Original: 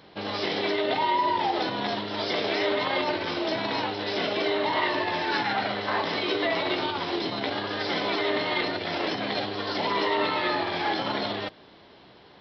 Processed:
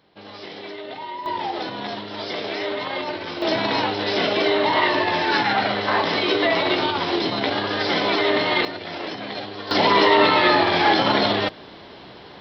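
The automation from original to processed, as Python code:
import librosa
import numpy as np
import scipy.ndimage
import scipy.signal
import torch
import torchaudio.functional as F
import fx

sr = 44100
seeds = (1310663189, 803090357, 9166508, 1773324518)

y = fx.gain(x, sr, db=fx.steps((0.0, -8.5), (1.26, -1.0), (3.42, 6.5), (8.65, -2.0), (9.71, 10.0)))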